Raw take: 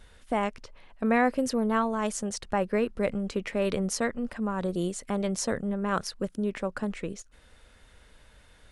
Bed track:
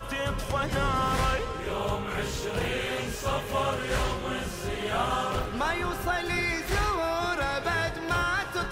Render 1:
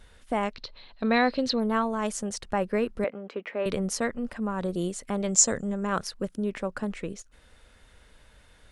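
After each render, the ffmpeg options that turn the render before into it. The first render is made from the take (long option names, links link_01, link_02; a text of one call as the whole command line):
ffmpeg -i in.wav -filter_complex "[0:a]asettb=1/sr,asplit=3[link_01][link_02][link_03];[link_01]atrim=end=0.534[link_04];[link_02]atrim=start=0.53:end=1.6,asetpts=PTS-STARTPTS,afade=type=in:duration=0.004:curve=qsin,afade=type=out:start_time=1.066:duration=0.004:curve=qsin,lowpass=frequency=4100:width_type=q:width=10[link_05];[link_03]atrim=start=1.596[link_06];[link_04][link_05]acrossfade=duration=0.004:curve1=hsin:curve2=qsin[link_07];[link_07][link_06]acrossfade=duration=0.004:curve1=qsin:curve2=hsin,asettb=1/sr,asplit=3[link_08][link_09][link_10];[link_08]atrim=end=3.044[link_11];[link_09]atrim=start=3.04:end=3.66,asetpts=PTS-STARTPTS,afade=type=in:duration=0.004:curve=qsin,afade=type=out:start_time=0.616:duration=0.004:curve=qsin,highpass=370,lowpass=2500[link_12];[link_10]atrim=start=3.656[link_13];[link_11][link_12]acrossfade=duration=0.004:curve1=hsin:curve2=qsin[link_14];[link_14][link_13]acrossfade=duration=0.004:curve1=qsin:curve2=hsin,asettb=1/sr,asplit=3[link_15][link_16][link_17];[link_15]atrim=end=5.284[link_18];[link_16]atrim=start=5.28:end=5.87,asetpts=PTS-STARTPTS,afade=type=in:duration=0.004:curve=qsin,afade=type=out:start_time=0.586:duration=0.004:curve=qsin,lowpass=frequency=7200:width_type=q:width=12[link_19];[link_17]atrim=start=5.866[link_20];[link_18][link_19]acrossfade=duration=0.004:curve1=hsin:curve2=qsin[link_21];[link_21][link_20]acrossfade=duration=0.004:curve1=qsin:curve2=hsin" out.wav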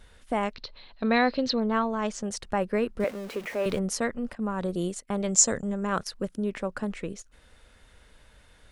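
ffmpeg -i in.wav -filter_complex "[0:a]asettb=1/sr,asplit=3[link_01][link_02][link_03];[link_01]atrim=end=0.554[link_04];[link_02]atrim=start=0.55:end=2.24,asetpts=PTS-STARTPTS,afade=type=in:duration=0.004:curve=qsin,afade=type=out:start_time=1.686:duration=0.004:curve=qsin,lowpass=frequency=6600:width=0.5412,lowpass=frequency=6600:width=1.3066[link_05];[link_03]atrim=start=2.236[link_06];[link_04][link_05]acrossfade=duration=0.004:curve1=hsin:curve2=qsin[link_07];[link_07][link_06]acrossfade=duration=0.004:curve1=qsin:curve2=hsin,asettb=1/sr,asplit=3[link_08][link_09][link_10];[link_08]atrim=end=3.004[link_11];[link_09]atrim=start=3:end=3.79,asetpts=PTS-STARTPTS,afade=type=in:duration=0.004:curve=qsin,afade=type=out:start_time=0.786:duration=0.004:curve=qsin,aeval=exprs='val(0)+0.5*0.0119*sgn(val(0))':channel_layout=same[link_12];[link_10]atrim=start=3.786[link_13];[link_11][link_12]acrossfade=duration=0.004:curve1=hsin:curve2=qsin[link_14];[link_14][link_13]acrossfade=duration=0.004:curve1=qsin:curve2=hsin,asettb=1/sr,asplit=3[link_15][link_16][link_17];[link_15]atrim=end=4.354[link_18];[link_16]atrim=start=4.35:end=6.11,asetpts=PTS-STARTPTS,afade=type=in:duration=0.004:curve=qsin,afade=type=out:start_time=1.756:duration=0.004:curve=qsin,agate=range=-14dB:threshold=-39dB:ratio=16:release=100:detection=peak[link_19];[link_17]atrim=start=6.106[link_20];[link_18][link_19]acrossfade=duration=0.004:curve1=hsin:curve2=qsin[link_21];[link_21][link_20]acrossfade=duration=0.004:curve1=qsin:curve2=hsin" out.wav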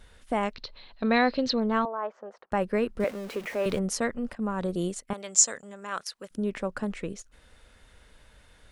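ffmpeg -i in.wav -filter_complex "[0:a]asettb=1/sr,asplit=3[link_01][link_02][link_03];[link_01]atrim=end=1.854[link_04];[link_02]atrim=start=1.85:end=2.52,asetpts=PTS-STARTPTS,afade=type=in:duration=0.004:curve=qsin,afade=type=out:start_time=0.666:duration=0.004:curve=qsin,asuperpass=centerf=820:order=4:qfactor=0.89[link_05];[link_03]atrim=start=2.516[link_06];[link_04][link_05]acrossfade=duration=0.004:curve1=hsin:curve2=qsin[link_07];[link_07][link_06]acrossfade=duration=0.004:curve1=qsin:curve2=hsin,asettb=1/sr,asplit=3[link_08][link_09][link_10];[link_08]atrim=end=5.134[link_11];[link_09]atrim=start=5.13:end=6.31,asetpts=PTS-STARTPTS,afade=type=in:duration=0.004:curve=qsin,afade=type=out:start_time=1.176:duration=0.004:curve=qsin,highpass=frequency=1400:poles=1[link_12];[link_10]atrim=start=6.306[link_13];[link_11][link_12]acrossfade=duration=0.004:curve1=hsin:curve2=qsin[link_14];[link_14][link_13]acrossfade=duration=0.004:curve1=qsin:curve2=hsin" out.wav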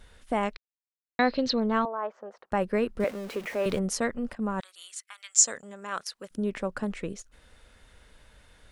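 ffmpeg -i in.wav -filter_complex "[0:a]asettb=1/sr,asplit=3[link_01][link_02][link_03];[link_01]atrim=end=4.604[link_04];[link_02]atrim=start=4.6:end=5.45,asetpts=PTS-STARTPTS,afade=type=in:duration=0.004:curve=qsin,afade=type=out:start_time=0.846:duration=0.004:curve=qsin,highpass=frequency=1400:width=0.5412,highpass=frequency=1400:width=1.3066[link_05];[link_03]atrim=start=5.446[link_06];[link_04][link_05]acrossfade=duration=0.004:curve1=hsin:curve2=qsin[link_07];[link_07][link_06]acrossfade=duration=0.004:curve1=qsin:curve2=hsin,asplit=3[link_08][link_09][link_10];[link_08]atrim=end=0.57,asetpts=PTS-STARTPTS,afade=type=out:start_time=0.566:duration=0.004:curve=hsin[link_11];[link_09]atrim=start=0.57:end=1.19,asetpts=PTS-STARTPTS,volume=0[link_12];[link_10]atrim=start=1.19,asetpts=PTS-STARTPTS,afade=type=in:duration=0.004:curve=hsin[link_13];[link_11][link_12][link_13]concat=n=3:v=0:a=1" out.wav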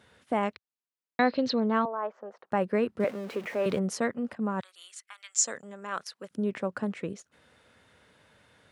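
ffmpeg -i in.wav -af "highpass=frequency=100:width=0.5412,highpass=frequency=100:width=1.3066,highshelf=frequency=4200:gain=-7.5" out.wav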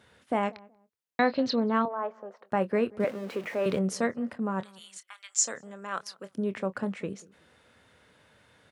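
ffmpeg -i in.wav -filter_complex "[0:a]asplit=2[link_01][link_02];[link_02]adelay=26,volume=-14dB[link_03];[link_01][link_03]amix=inputs=2:normalize=0,asplit=2[link_04][link_05];[link_05]adelay=186,lowpass=frequency=960:poles=1,volume=-22dB,asplit=2[link_06][link_07];[link_07]adelay=186,lowpass=frequency=960:poles=1,volume=0.26[link_08];[link_04][link_06][link_08]amix=inputs=3:normalize=0" out.wav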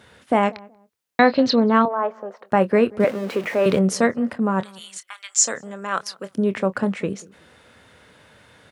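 ffmpeg -i in.wav -af "volume=9.5dB,alimiter=limit=-3dB:level=0:latency=1" out.wav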